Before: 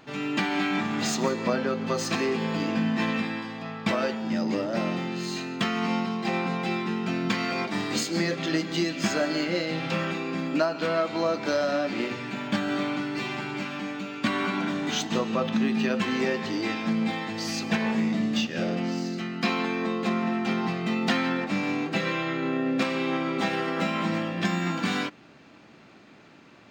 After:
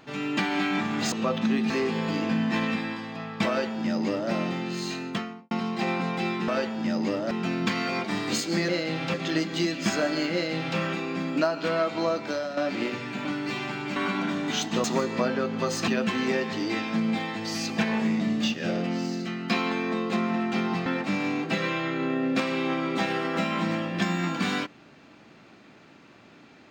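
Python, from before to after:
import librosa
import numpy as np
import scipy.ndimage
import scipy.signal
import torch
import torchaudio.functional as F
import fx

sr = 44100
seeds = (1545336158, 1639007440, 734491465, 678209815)

y = fx.studio_fade_out(x, sr, start_s=5.45, length_s=0.52)
y = fx.edit(y, sr, fx.swap(start_s=1.12, length_s=1.04, other_s=15.23, other_length_s=0.58),
    fx.duplicate(start_s=3.94, length_s=0.83, to_s=6.94),
    fx.duplicate(start_s=9.51, length_s=0.45, to_s=8.32),
    fx.fade_out_to(start_s=11.23, length_s=0.52, floor_db=-9.5),
    fx.cut(start_s=12.43, length_s=0.51),
    fx.cut(start_s=13.65, length_s=0.7),
    fx.cut(start_s=20.79, length_s=0.5), tone=tone)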